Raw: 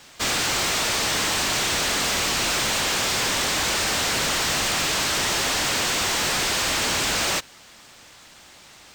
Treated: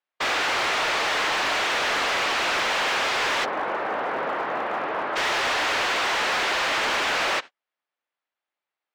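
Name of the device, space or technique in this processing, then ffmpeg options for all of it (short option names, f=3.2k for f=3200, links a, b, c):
walkie-talkie: -filter_complex "[0:a]asplit=3[a][b][c];[a]afade=t=out:st=3.44:d=0.02[d];[b]lowpass=1.1k,afade=t=in:st=3.44:d=0.02,afade=t=out:st=5.15:d=0.02[e];[c]afade=t=in:st=5.15:d=0.02[f];[d][e][f]amix=inputs=3:normalize=0,highpass=460,lowpass=2.5k,asoftclip=type=hard:threshold=-26dB,agate=range=-43dB:threshold=-39dB:ratio=16:detection=peak,volume=5.5dB"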